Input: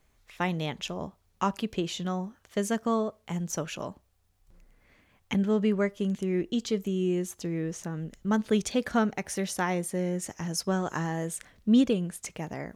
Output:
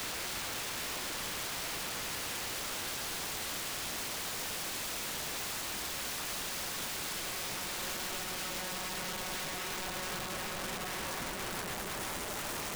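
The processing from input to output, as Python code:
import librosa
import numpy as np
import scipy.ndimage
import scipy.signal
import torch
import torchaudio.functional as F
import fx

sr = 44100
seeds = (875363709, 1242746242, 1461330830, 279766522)

y = fx.paulstretch(x, sr, seeds[0], factor=15.0, window_s=1.0, from_s=1.57)
y = (np.mod(10.0 ** (33.5 / 20.0) * y + 1.0, 2.0) - 1.0) / 10.0 ** (33.5 / 20.0)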